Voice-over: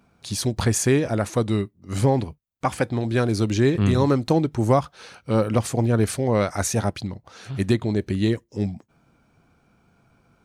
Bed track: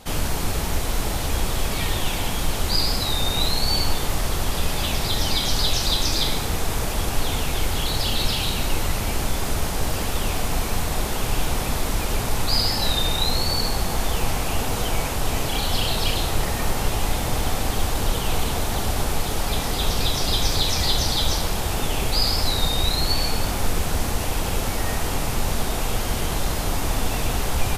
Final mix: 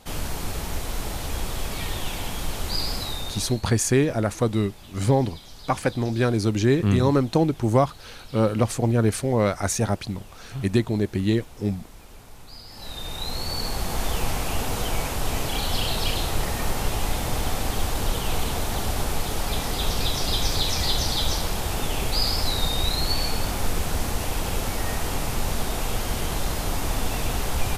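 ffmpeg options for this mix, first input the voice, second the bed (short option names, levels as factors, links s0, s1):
-filter_complex "[0:a]adelay=3050,volume=0.944[s0];[1:a]volume=5.31,afade=t=out:st=2.98:d=0.65:silence=0.141254,afade=t=in:st=12.67:d=1.39:silence=0.1[s1];[s0][s1]amix=inputs=2:normalize=0"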